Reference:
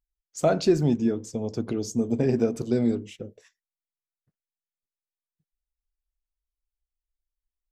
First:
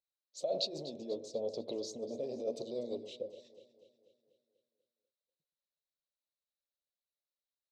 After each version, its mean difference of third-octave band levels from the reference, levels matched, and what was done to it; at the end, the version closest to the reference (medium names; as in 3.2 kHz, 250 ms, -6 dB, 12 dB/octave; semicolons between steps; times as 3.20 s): 7.5 dB: compressor with a negative ratio -26 dBFS, ratio -1; saturation -17.5 dBFS, distortion -20 dB; two resonant band-passes 1.5 kHz, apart 2.8 oct; on a send: echo whose repeats swap between lows and highs 122 ms, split 1.5 kHz, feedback 73%, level -13 dB; on the sum: trim +4 dB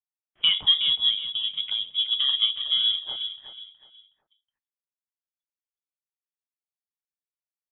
18.0 dB: high-pass 170 Hz 24 dB/octave; gate with hold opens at -42 dBFS; feedback delay 369 ms, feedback 29%, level -10 dB; frequency inversion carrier 3.6 kHz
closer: first